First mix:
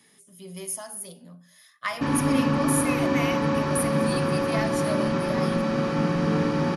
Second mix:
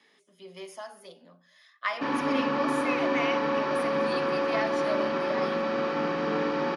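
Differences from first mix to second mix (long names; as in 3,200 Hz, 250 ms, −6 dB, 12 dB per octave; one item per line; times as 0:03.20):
speech: add low-pass filter 9,700 Hz 12 dB per octave
master: add three-way crossover with the lows and the highs turned down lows −22 dB, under 280 Hz, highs −22 dB, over 5,100 Hz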